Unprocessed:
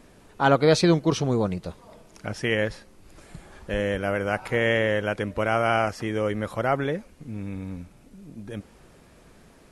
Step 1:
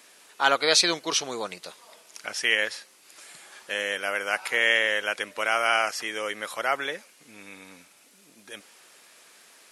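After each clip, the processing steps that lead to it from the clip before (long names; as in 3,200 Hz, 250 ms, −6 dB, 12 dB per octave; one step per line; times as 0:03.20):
high-pass filter 340 Hz 12 dB per octave
tilt shelving filter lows −10 dB, about 1,100 Hz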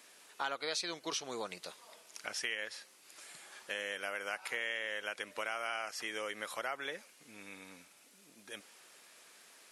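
downward compressor 4 to 1, threshold −30 dBFS, peak gain reduction 12.5 dB
level −5.5 dB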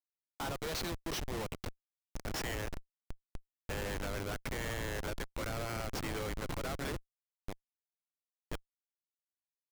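comparator with hysteresis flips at −38.5 dBFS
level +5.5 dB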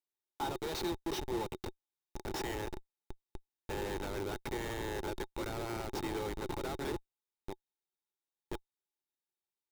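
hollow resonant body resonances 370/850/3,700 Hz, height 13 dB, ringing for 40 ms
level −3.5 dB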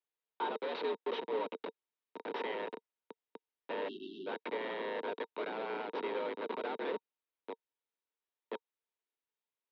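time-frequency box erased 0:03.88–0:04.27, 330–2,600 Hz
single-sideband voice off tune +79 Hz 160–3,500 Hz
level +1 dB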